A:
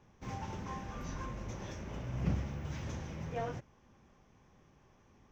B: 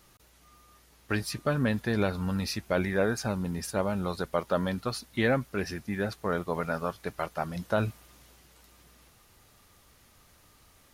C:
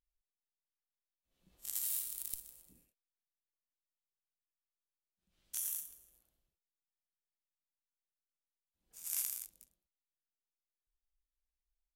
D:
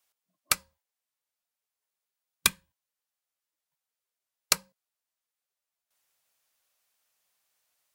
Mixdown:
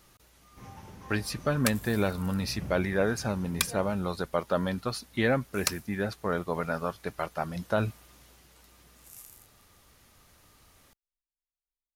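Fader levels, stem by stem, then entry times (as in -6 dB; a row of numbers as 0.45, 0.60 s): -6.0, 0.0, -12.0, -5.0 dB; 0.35, 0.00, 0.00, 1.15 s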